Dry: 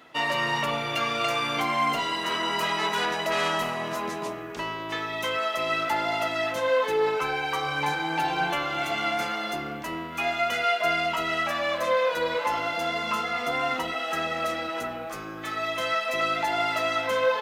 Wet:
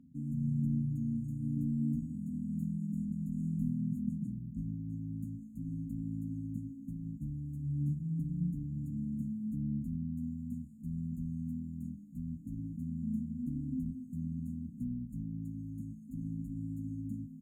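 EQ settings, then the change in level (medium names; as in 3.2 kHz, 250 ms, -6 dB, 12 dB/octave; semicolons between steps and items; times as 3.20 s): brick-wall FIR band-stop 280–6500 Hz; distance through air 490 m; peaking EQ 2.2 kHz -4.5 dB 2.8 oct; +7.5 dB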